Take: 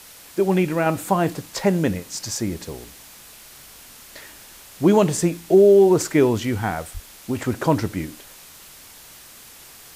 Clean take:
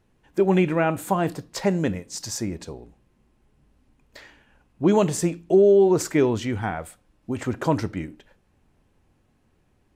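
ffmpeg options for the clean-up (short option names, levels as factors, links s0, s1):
-filter_complex "[0:a]adeclick=t=4,asplit=3[s0][s1][s2];[s0]afade=t=out:st=6.93:d=0.02[s3];[s1]highpass=f=140:w=0.5412,highpass=f=140:w=1.3066,afade=t=in:st=6.93:d=0.02,afade=t=out:st=7.05:d=0.02[s4];[s2]afade=t=in:st=7.05:d=0.02[s5];[s3][s4][s5]amix=inputs=3:normalize=0,afwtdn=0.0071,asetnsamples=n=441:p=0,asendcmd='0.86 volume volume -3dB',volume=1"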